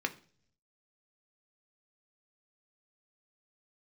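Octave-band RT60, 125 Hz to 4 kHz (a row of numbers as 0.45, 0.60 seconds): 1.0, 0.75, 0.55, 0.40, 0.40, 0.55 seconds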